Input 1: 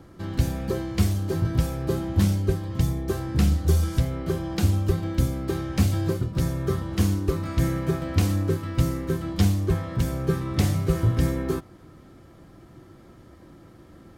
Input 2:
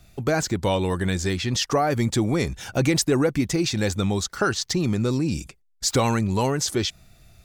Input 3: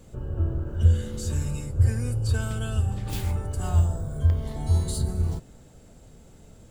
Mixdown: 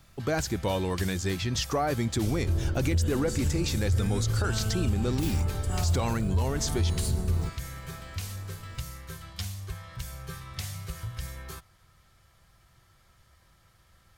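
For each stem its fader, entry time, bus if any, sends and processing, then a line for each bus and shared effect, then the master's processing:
0.0 dB, 0.00 s, no send, guitar amp tone stack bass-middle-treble 10-0-10; downward compressor 2 to 1, threshold −34 dBFS, peak gain reduction 6 dB
−5.5 dB, 0.00 s, no send, no processing
−0.5 dB, 2.10 s, no send, no processing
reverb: not used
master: brickwall limiter −18 dBFS, peak gain reduction 10 dB

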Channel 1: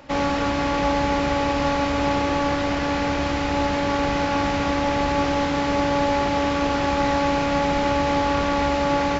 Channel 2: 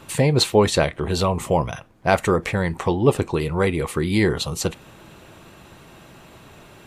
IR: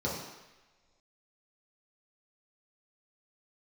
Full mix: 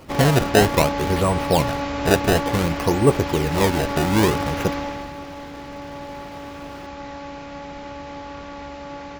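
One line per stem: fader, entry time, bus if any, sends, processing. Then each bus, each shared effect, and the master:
0:04.76 −4 dB → 0:05.16 −14 dB, 0.00 s, no send, no processing
+1.0 dB, 0.00 s, no send, parametric band 4,800 Hz −8 dB 1.7 octaves; sample-and-hold swept by an LFO 23×, swing 160% 0.57 Hz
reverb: not used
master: no processing

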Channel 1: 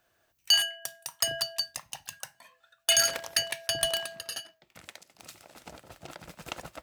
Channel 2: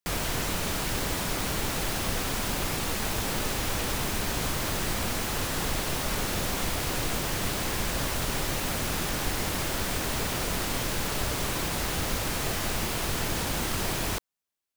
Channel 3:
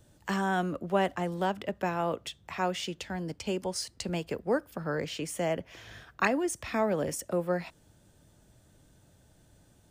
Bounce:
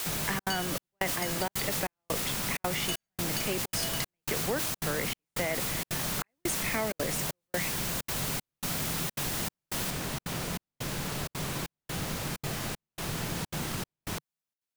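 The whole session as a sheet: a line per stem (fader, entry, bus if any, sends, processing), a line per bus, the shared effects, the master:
−8.5 dB, 0.00 s, no send, no processing
−5.0 dB, 0.00 s, no send, parametric band 150 Hz +11.5 dB 1 octave
+2.0 dB, 0.00 s, no send, parametric band 2,100 Hz +12 dB 0.4 octaves; bit-depth reduction 6 bits, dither triangular; level that may fall only so fast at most 46 dB per second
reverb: not used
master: gate pattern "xxxxx.xxxx...x" 193 BPM −60 dB; low-shelf EQ 160 Hz −6.5 dB; downward compressor, threshold −27 dBFS, peak gain reduction 8 dB

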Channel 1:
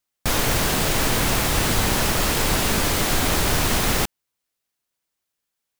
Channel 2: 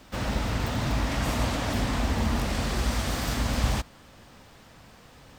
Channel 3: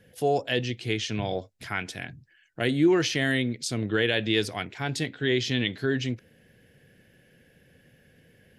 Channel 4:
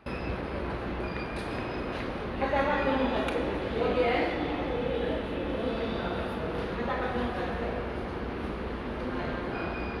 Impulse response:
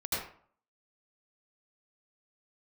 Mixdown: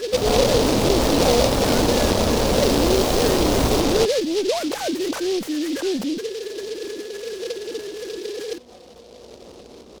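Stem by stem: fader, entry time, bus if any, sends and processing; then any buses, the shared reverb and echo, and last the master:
−4.0 dB, 0.00 s, no send, low-pass filter 4,900 Hz
−1.0 dB, 0.00 s, no send, high-shelf EQ 4,500 Hz +12 dB
−11.0 dB, 0.00 s, no send, three sine waves on the formant tracks; tube saturation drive 18 dB, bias 0.4; envelope flattener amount 100%
−12.5 dB, 1.40 s, no send, tube saturation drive 32 dB, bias 0.45; compressor whose output falls as the input rises −39 dBFS, ratio −0.5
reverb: not used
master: graphic EQ with 10 bands 250 Hz +4 dB, 500 Hz +12 dB, 1,000 Hz +3 dB, 2,000 Hz −4 dB, 4,000 Hz −9 dB; short delay modulated by noise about 3,900 Hz, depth 0.1 ms

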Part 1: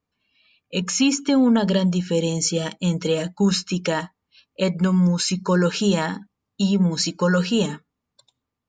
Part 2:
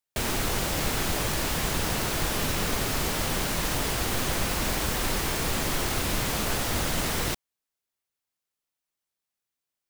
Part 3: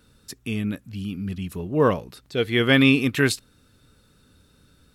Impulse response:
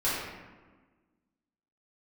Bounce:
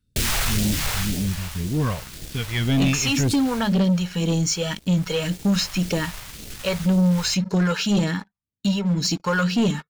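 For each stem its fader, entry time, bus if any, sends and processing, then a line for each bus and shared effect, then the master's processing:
−5.5 dB, 2.05 s, no send, high-shelf EQ 3,300 Hz −8.5 dB
0:00.99 −1.5 dB → 0:01.41 −8.5 dB → 0:03.56 −8.5 dB → 0:03.78 −19 dB, 0.00 s, no send, automatic ducking −11 dB, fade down 1.65 s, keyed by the third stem
−14.5 dB, 0.00 s, no send, low-shelf EQ 350 Hz +11.5 dB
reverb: not used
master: all-pass phaser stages 2, 1.9 Hz, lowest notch 260–1,100 Hz; leveller curve on the samples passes 3

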